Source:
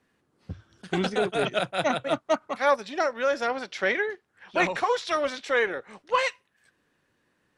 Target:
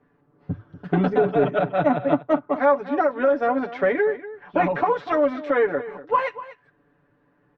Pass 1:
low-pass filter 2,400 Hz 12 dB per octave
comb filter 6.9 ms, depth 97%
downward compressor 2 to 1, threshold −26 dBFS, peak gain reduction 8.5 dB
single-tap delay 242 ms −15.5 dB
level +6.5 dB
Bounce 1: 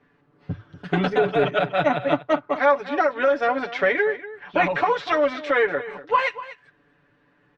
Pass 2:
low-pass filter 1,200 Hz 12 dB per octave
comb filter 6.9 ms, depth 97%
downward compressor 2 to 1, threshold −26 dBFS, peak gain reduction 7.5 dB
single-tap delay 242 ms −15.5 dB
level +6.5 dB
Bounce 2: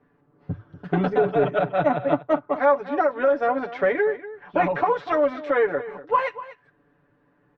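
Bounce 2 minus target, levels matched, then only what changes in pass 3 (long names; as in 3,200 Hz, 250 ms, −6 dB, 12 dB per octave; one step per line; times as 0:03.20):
250 Hz band −2.5 dB
add after downward compressor: dynamic equaliser 240 Hz, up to +6 dB, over −48 dBFS, Q 2.2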